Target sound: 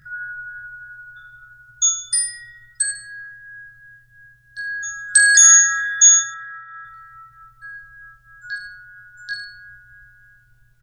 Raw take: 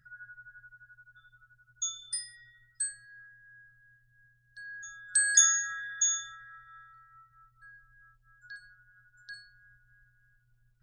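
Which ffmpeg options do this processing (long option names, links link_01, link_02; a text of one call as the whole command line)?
ffmpeg -i in.wav -filter_complex "[0:a]asettb=1/sr,asplit=3[link_01][link_02][link_03];[link_01]atrim=end=6.194[link_04];[link_02]atrim=start=6.19:end=6.85,asetpts=PTS-STARTPTS,afade=type=in:duration=0.004:curve=qsin,afade=type=out:start_time=0.656:duration=0.004:curve=qsin,highpass=140,lowpass=2600[link_05];[link_03]atrim=start=6.846[link_06];[link_04][link_05]acrossfade=duration=0.004:curve1=hsin:curve2=qsin[link_07];[link_07][link_06]acrossfade=duration=0.004:curve1=qsin:curve2=hsin,aecho=1:1:20|44|72.8|107.4|148.8:0.631|0.398|0.251|0.158|0.1,alimiter=level_in=15dB:limit=-1dB:release=50:level=0:latency=1,volume=-1dB" out.wav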